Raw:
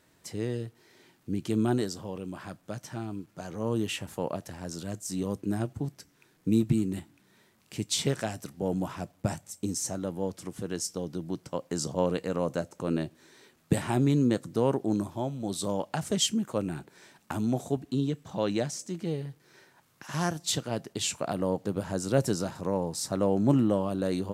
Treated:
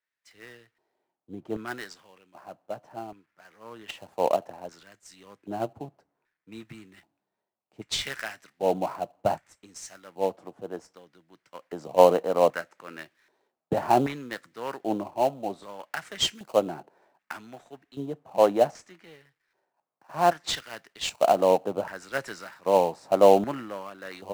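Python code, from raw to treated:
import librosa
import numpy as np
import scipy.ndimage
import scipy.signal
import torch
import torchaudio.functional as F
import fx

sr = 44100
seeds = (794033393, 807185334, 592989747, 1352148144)

p1 = fx.dynamic_eq(x, sr, hz=1400.0, q=1.8, threshold_db=-45.0, ratio=4.0, max_db=3)
p2 = fx.filter_lfo_bandpass(p1, sr, shape='square', hz=0.64, low_hz=720.0, high_hz=1900.0, q=2.3)
p3 = fx.sample_hold(p2, sr, seeds[0], rate_hz=3500.0, jitter_pct=20)
p4 = p2 + (p3 * librosa.db_to_amplitude(-9.0))
p5 = fx.band_widen(p4, sr, depth_pct=70)
y = p5 * librosa.db_to_amplitude(8.0)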